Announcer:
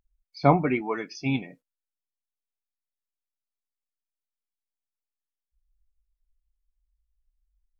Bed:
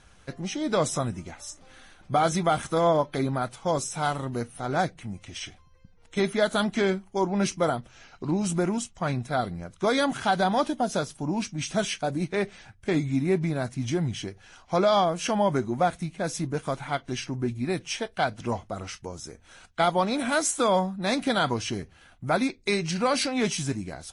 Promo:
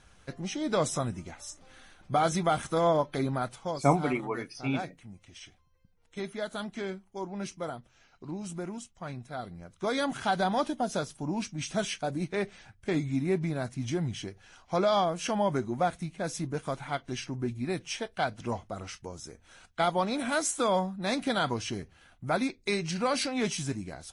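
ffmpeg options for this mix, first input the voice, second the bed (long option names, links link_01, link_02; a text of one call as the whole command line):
ffmpeg -i stem1.wav -i stem2.wav -filter_complex "[0:a]adelay=3400,volume=-4.5dB[link_01];[1:a]volume=4.5dB,afade=type=out:start_time=3.54:duration=0.24:silence=0.375837,afade=type=in:start_time=9.38:duration=0.86:silence=0.421697[link_02];[link_01][link_02]amix=inputs=2:normalize=0" out.wav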